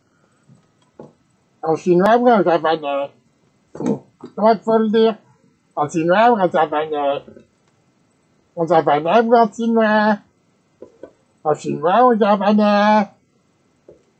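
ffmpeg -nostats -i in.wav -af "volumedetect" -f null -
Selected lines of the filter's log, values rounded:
mean_volume: -18.0 dB
max_volume: -1.4 dB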